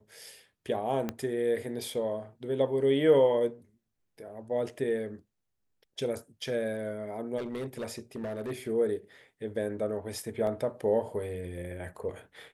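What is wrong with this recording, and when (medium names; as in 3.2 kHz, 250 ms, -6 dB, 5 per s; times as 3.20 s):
1.09 s: pop -18 dBFS
7.37–8.51 s: clipped -31.5 dBFS
10.47 s: dropout 2.1 ms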